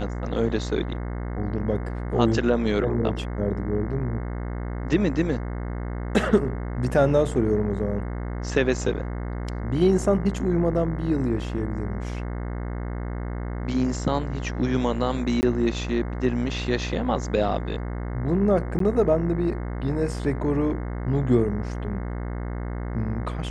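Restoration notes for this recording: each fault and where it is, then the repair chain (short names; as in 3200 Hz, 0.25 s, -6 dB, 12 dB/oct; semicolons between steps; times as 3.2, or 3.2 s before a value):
buzz 60 Hz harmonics 36 -30 dBFS
15.41–15.43 gap 19 ms
18.79–18.8 gap 13 ms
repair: de-hum 60 Hz, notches 36; interpolate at 15.41, 19 ms; interpolate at 18.79, 13 ms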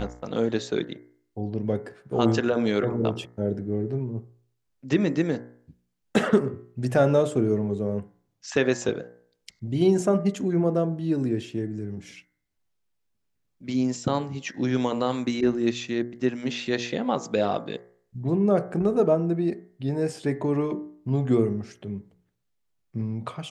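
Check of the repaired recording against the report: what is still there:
none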